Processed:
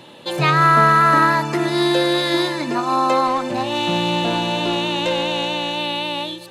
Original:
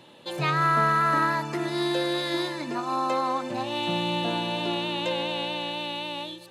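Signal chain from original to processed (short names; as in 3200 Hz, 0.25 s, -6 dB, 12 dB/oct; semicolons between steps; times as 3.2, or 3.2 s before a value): 3.27–5.78 tube stage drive 20 dB, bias 0.2; gain +9 dB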